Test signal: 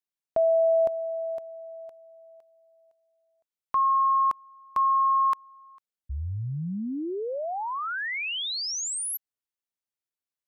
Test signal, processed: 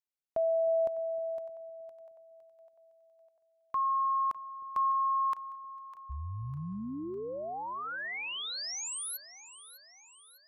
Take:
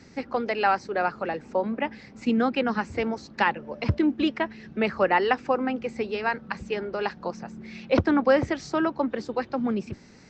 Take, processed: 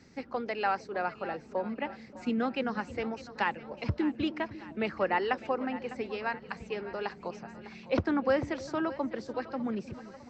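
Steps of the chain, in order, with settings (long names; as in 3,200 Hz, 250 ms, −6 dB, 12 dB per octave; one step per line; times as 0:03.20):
echo with a time of its own for lows and highs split 570 Hz, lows 310 ms, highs 603 ms, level −15 dB
level −7 dB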